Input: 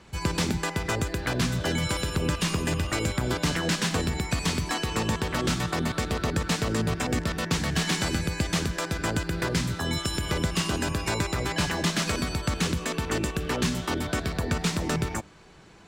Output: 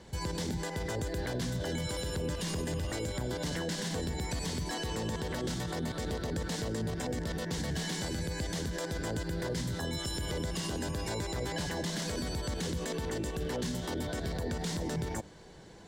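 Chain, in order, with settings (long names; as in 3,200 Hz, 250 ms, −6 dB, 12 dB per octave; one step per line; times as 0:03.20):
thirty-one-band graphic EQ 500 Hz +5 dB, 1,250 Hz −11 dB, 2,500 Hz −10 dB
brickwall limiter −26.5 dBFS, peak gain reduction 11.5 dB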